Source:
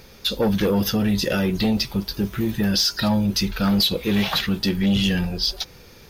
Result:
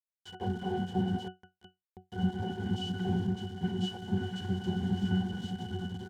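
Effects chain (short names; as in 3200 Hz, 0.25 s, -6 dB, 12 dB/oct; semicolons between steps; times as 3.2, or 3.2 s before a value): doubler 33 ms -12 dB; swelling echo 0.102 s, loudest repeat 5, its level -13 dB; noise vocoder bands 4; 1.18–2.12 auto swell 0.602 s; bit-crush 4-bit; high shelf 5400 Hz +7.5 dB; octave resonator F#, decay 0.18 s; 3.27–4.41 three-band expander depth 70%; gain -2 dB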